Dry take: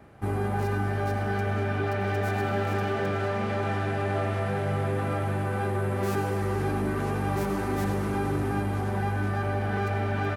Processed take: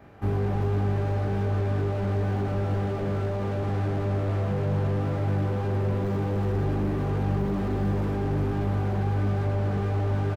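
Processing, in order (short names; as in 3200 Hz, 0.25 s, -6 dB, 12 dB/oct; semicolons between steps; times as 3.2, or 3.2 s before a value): bell 9400 Hz -14 dB 0.46 oct; reverse bouncing-ball echo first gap 20 ms, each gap 1.1×, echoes 5; slew limiter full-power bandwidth 17 Hz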